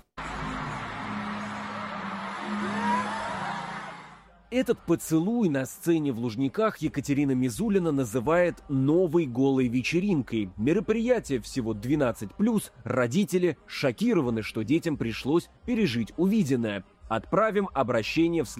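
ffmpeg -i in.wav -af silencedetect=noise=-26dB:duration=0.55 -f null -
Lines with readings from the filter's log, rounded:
silence_start: 3.77
silence_end: 4.53 | silence_duration: 0.76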